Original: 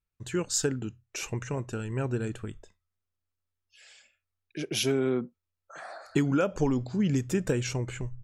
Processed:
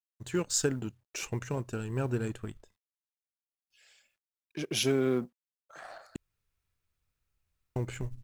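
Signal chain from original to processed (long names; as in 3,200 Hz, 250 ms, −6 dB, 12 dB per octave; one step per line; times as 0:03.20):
mu-law and A-law mismatch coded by A
0:01.52–0:02.09: parametric band 2,000 Hz −7 dB 0.22 octaves
0:06.16–0:07.76: fill with room tone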